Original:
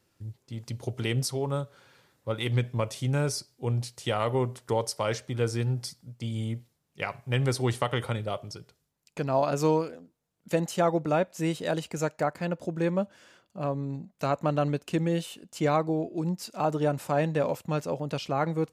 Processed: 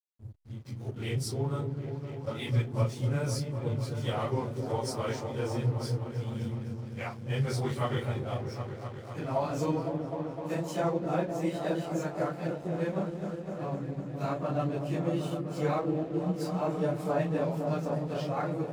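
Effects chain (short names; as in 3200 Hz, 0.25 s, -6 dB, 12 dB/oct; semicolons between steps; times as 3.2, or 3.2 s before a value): phase scrambler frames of 0.1 s; notch 2800 Hz, Q 26; repeats that get brighter 0.255 s, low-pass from 400 Hz, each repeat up 1 oct, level -3 dB; backlash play -41 dBFS; gain -5 dB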